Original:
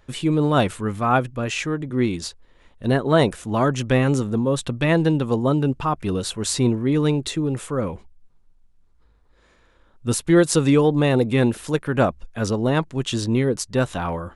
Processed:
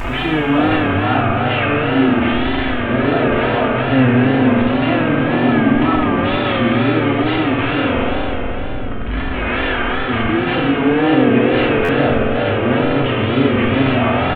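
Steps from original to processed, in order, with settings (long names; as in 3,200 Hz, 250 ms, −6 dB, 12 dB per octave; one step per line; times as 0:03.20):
linear delta modulator 16 kbit/s, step −16 dBFS
comb filter 3.1 ms, depth 59%
brickwall limiter −11.5 dBFS, peak gain reduction 9.5 dB
convolution reverb RT60 3.9 s, pre-delay 3 ms, DRR −7 dB
tape wow and flutter 99 cents
buffer that repeats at 0:11.84, samples 512, times 3
level −2 dB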